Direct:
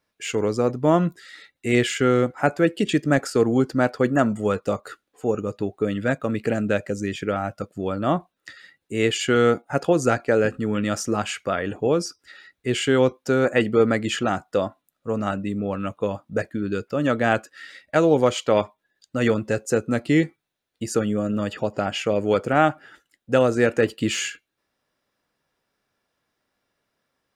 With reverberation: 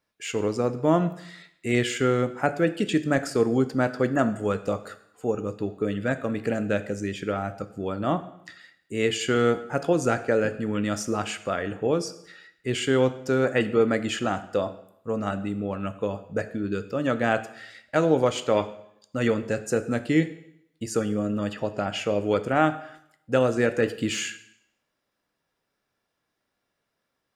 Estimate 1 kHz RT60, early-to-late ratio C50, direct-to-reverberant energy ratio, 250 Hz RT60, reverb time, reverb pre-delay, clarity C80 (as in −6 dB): 0.75 s, 14.5 dB, 11.0 dB, 0.75 s, 0.75 s, 6 ms, 16.0 dB